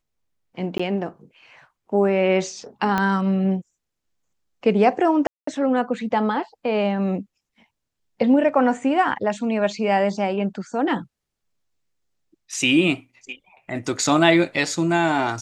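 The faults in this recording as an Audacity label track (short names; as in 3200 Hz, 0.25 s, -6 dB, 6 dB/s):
0.780000	0.800000	gap 15 ms
2.980000	2.980000	pop -9 dBFS
5.270000	5.470000	gap 0.204 s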